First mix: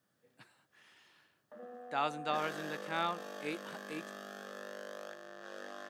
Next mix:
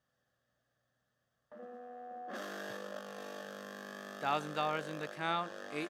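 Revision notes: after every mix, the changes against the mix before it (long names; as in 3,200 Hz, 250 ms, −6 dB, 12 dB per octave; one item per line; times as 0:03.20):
speech: entry +2.30 s
master: remove high-pass filter 160 Hz 12 dB per octave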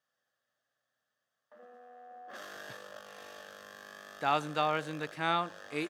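speech +4.5 dB
background: add high-pass filter 840 Hz 6 dB per octave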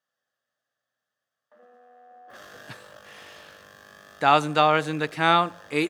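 speech +11.0 dB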